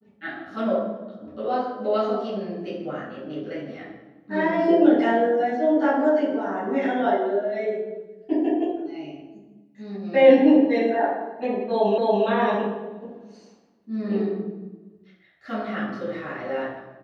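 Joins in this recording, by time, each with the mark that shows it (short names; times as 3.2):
11.98 repeat of the last 0.28 s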